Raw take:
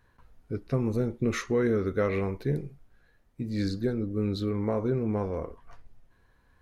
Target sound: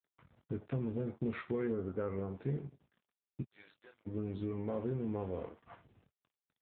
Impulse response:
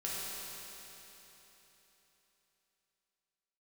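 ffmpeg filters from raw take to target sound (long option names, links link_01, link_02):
-filter_complex "[0:a]aecho=1:1:78:0.126,acompressor=threshold=-44dB:ratio=2,asplit=3[link_01][link_02][link_03];[link_01]afade=type=out:start_time=3.41:duration=0.02[link_04];[link_02]highpass=1000,afade=type=in:start_time=3.41:duration=0.02,afade=type=out:start_time=4.05:duration=0.02[link_05];[link_03]afade=type=in:start_time=4.05:duration=0.02[link_06];[link_04][link_05][link_06]amix=inputs=3:normalize=0,aeval=exprs='sgn(val(0))*max(abs(val(0))-0.002,0)':channel_layout=same,asplit=3[link_07][link_08][link_09];[link_07]afade=type=out:start_time=1.71:duration=0.02[link_10];[link_08]lowpass=frequency=1500:width=0.5412,lowpass=frequency=1500:width=1.3066,afade=type=in:start_time=1.71:duration=0.02,afade=type=out:start_time=2.34:duration=0.02[link_11];[link_09]afade=type=in:start_time=2.34:duration=0.02[link_12];[link_10][link_11][link_12]amix=inputs=3:normalize=0,asplit=2[link_13][link_14];[link_14]adelay=22,volume=-9.5dB[link_15];[link_13][link_15]amix=inputs=2:normalize=0,asoftclip=type=tanh:threshold=-30.5dB,volume=4dB" -ar 8000 -c:a libopencore_amrnb -b:a 7950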